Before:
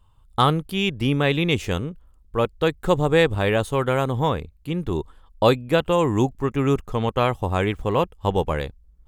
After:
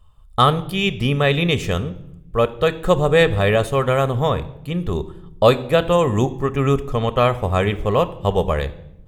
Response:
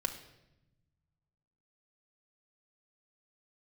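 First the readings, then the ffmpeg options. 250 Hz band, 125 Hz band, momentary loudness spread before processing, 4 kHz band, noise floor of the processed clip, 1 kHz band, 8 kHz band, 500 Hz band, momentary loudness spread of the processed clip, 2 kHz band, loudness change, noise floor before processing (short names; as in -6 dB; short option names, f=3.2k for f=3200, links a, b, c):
+1.0 dB, +3.5 dB, 10 LU, +3.0 dB, -44 dBFS, +3.0 dB, +3.0 dB, +4.0 dB, 10 LU, +3.0 dB, +3.5 dB, -55 dBFS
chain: -filter_complex "[0:a]asplit=2[a][b];[1:a]atrim=start_sample=2205,asetrate=52920,aresample=44100[c];[b][c]afir=irnorm=-1:irlink=0,volume=-2dB[d];[a][d]amix=inputs=2:normalize=0,volume=-1.5dB"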